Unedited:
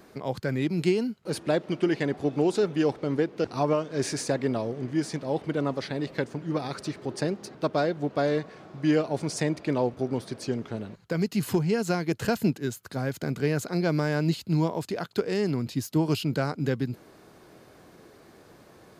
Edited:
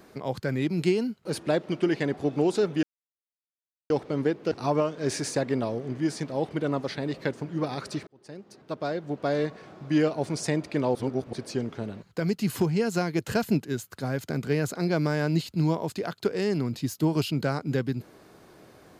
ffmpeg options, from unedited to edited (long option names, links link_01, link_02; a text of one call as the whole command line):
ffmpeg -i in.wav -filter_complex "[0:a]asplit=5[link_01][link_02][link_03][link_04][link_05];[link_01]atrim=end=2.83,asetpts=PTS-STARTPTS,afade=type=out:start_time=2.826:duration=0.004:curve=hsin,apad=pad_dur=1.07[link_06];[link_02]atrim=start=2.83:end=7,asetpts=PTS-STARTPTS,afade=type=in:duration=0.004:curve=hsin,afade=type=out:start_time=4.166:duration=0.004:curve=hsin[link_07];[link_03]atrim=start=7:end=9.882,asetpts=PTS-STARTPTS,afade=type=in:duration=1.45[link_08];[link_04]atrim=start=9.878:end=10.262,asetpts=PTS-STARTPTS,areverse[link_09];[link_05]atrim=start=10.258[link_10];[link_06][link_07][link_08]concat=n=3:v=0:a=1[link_11];[link_11][link_09]acrossfade=duration=0.004:curve1=hsin:curve2=hsin[link_12];[link_12][link_10]acrossfade=duration=0.004:curve1=hsin:curve2=hsin" out.wav